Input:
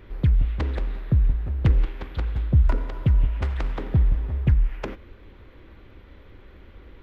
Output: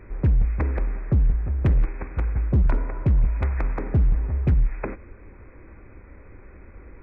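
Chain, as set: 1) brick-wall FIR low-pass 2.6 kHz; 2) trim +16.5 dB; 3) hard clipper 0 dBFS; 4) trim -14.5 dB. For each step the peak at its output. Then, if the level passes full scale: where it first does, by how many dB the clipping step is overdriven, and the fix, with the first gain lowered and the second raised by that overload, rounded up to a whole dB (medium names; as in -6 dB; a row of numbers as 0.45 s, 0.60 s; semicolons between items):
-9.5 dBFS, +7.0 dBFS, 0.0 dBFS, -14.5 dBFS; step 2, 7.0 dB; step 2 +9.5 dB, step 4 -7.5 dB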